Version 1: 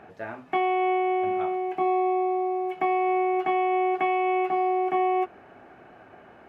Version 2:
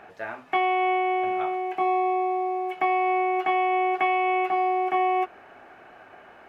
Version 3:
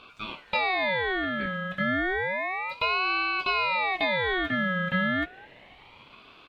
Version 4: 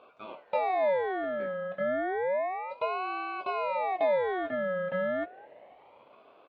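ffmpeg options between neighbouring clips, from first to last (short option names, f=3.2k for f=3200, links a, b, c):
-af "equalizer=f=140:w=0.32:g=-11.5,volume=5dB"
-filter_complex "[0:a]acrossover=split=230[a][b];[a]adelay=220[c];[c][b]amix=inputs=2:normalize=0,aeval=exprs='val(0)*sin(2*PI*1400*n/s+1400*0.35/0.31*sin(2*PI*0.31*n/s))':c=same"
-af "bandpass=f=590:t=q:w=2.7:csg=0,volume=6dB"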